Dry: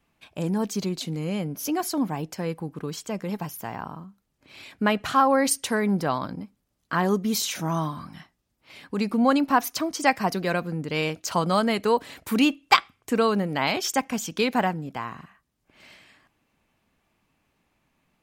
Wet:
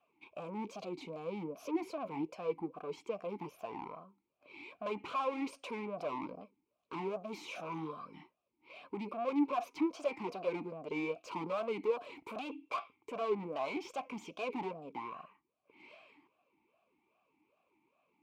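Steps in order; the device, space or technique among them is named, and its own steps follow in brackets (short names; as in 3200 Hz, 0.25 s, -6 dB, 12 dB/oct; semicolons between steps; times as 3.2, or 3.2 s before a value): 7.74–8.14 band shelf 780 Hz -8 dB 1 oct; talk box (tube stage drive 32 dB, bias 0.4; vowel sweep a-u 2.5 Hz); gain +8.5 dB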